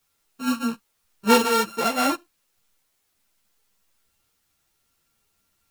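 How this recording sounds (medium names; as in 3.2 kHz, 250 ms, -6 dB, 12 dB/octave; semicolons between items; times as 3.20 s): a buzz of ramps at a fixed pitch in blocks of 32 samples; tremolo saw up 0.7 Hz, depth 55%; a quantiser's noise floor 12-bit, dither triangular; a shimmering, thickened sound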